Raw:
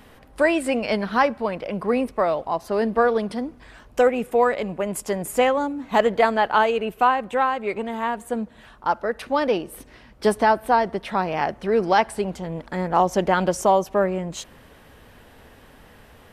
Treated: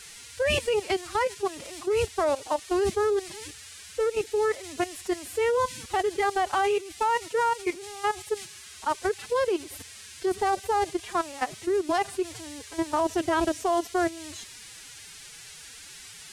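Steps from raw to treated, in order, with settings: in parallel at 0 dB: limiter -15 dBFS, peak gain reduction 10 dB; on the sum: level quantiser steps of 18 dB; band noise 1400–10000 Hz -40 dBFS; formant-preserving pitch shift +10 st; gain -5 dB

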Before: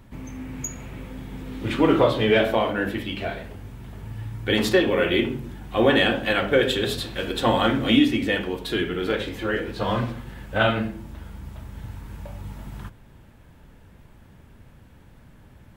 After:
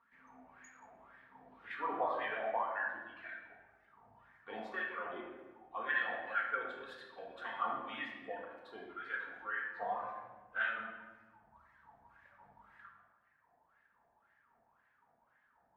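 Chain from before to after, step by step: wah 1.9 Hz 710–1800 Hz, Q 7.7; reverb removal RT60 1.8 s; shoebox room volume 930 m³, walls mixed, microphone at 1.7 m; gain -4.5 dB

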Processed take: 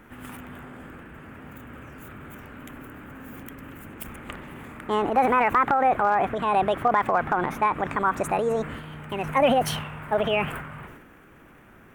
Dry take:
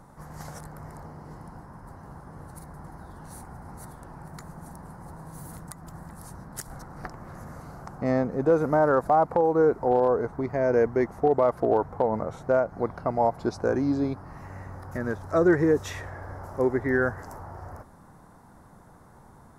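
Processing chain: wide varispeed 1.64×; transient shaper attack +1 dB, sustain +8 dB

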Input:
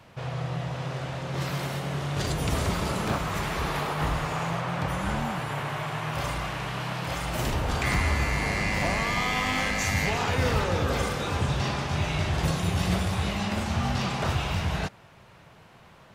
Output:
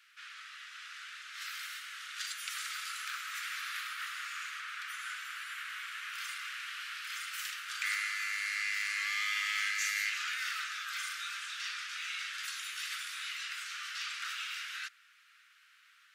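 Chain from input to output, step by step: steep high-pass 1300 Hz 72 dB/oct; gain -4 dB

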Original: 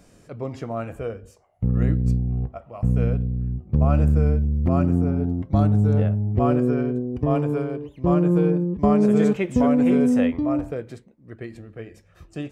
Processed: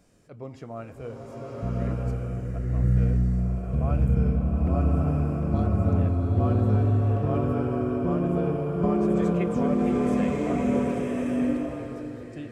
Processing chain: bloom reverb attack 1.2 s, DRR -4 dB; gain -8.5 dB

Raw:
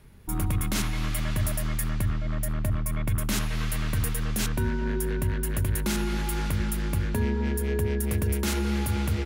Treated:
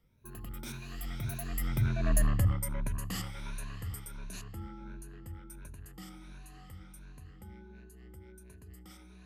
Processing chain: moving spectral ripple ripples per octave 1.5, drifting +1.6 Hz, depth 13 dB; Doppler pass-by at 2.17, 41 m/s, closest 10 m

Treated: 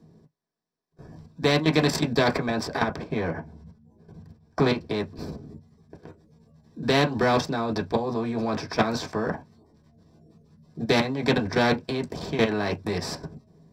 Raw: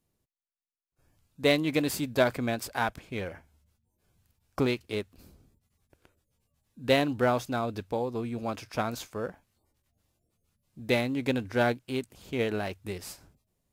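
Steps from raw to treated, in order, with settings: LPF 1900 Hz 6 dB/oct, from 2.81 s 1100 Hz, from 4.94 s 2300 Hz; level quantiser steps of 14 dB; reverb, pre-delay 3 ms, DRR 0 dB; spectral compressor 2:1; gain -4.5 dB

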